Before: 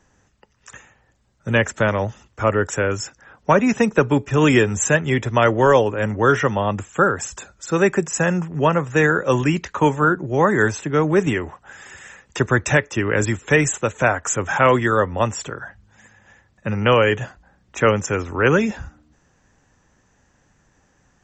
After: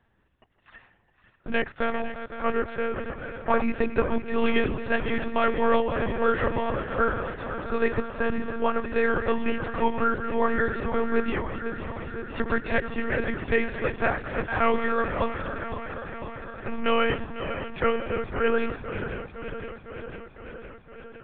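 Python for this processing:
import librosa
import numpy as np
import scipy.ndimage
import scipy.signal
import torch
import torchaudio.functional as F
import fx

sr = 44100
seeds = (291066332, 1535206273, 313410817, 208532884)

y = fx.reverse_delay_fb(x, sr, ms=254, feedback_pct=84, wet_db=-10.5)
y = fx.lpc_monotone(y, sr, seeds[0], pitch_hz=230.0, order=10)
y = y * librosa.db_to_amplitude(-7.5)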